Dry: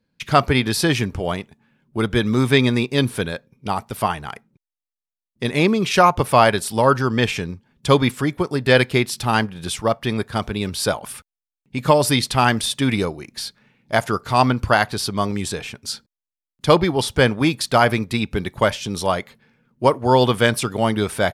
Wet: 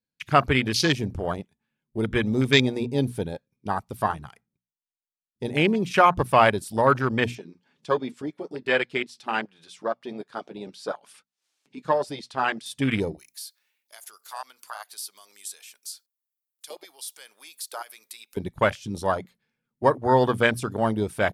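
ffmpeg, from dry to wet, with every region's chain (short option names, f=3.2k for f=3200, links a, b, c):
-filter_complex "[0:a]asettb=1/sr,asplit=3[a][b][c];[a]atrim=end=7.354[d];[b]atrim=start=7.35:end=12.66,asetpts=PTS-STARTPTS,afade=t=in:d=0.004:c=qsin,afade=t=out:st=5.306:d=0.004:c=qsin,highpass=270,lowpass=6k,acompressor=mode=upward:threshold=-24dB:ratio=2.5:attack=3.2:release=140:knee=2.83:detection=peak,flanger=delay=5:depth=2.2:regen=-48:speed=1.5:shape=sinusoidal[e];[c]atrim=start=12.656[f];[d][e]acrossfade=d=0.004:c1=hsin:c2=qsin[g];[g][f]acrossfade=d=0.004:c1=qsin:c2=hsin,asettb=1/sr,asplit=3[h][i][j];[h]atrim=end=13.194[k];[i]atrim=start=13.19:end=18.37,asetpts=PTS-STARTPTS,afade=t=in:d=0.004:c=qsin,afade=t=out:st=5.176:d=0.004:c=qsin,highpass=490,acompressor=threshold=-37dB:ratio=2:attack=3.2:release=140:knee=1:detection=peak,aemphasis=mode=production:type=riaa[l];[j]atrim=start=18.366[m];[k][l]acrossfade=d=0.004:c1=hsin:c2=qsin[n];[n][m]acrossfade=d=0.004:c1=qsin:c2=hsin,bandreject=f=60:t=h:w=6,bandreject=f=120:t=h:w=6,bandreject=f=180:t=h:w=6,bandreject=f=240:t=h:w=6,afwtdn=0.0631,equalizer=f=12k:t=o:w=3:g=10,volume=-4.5dB"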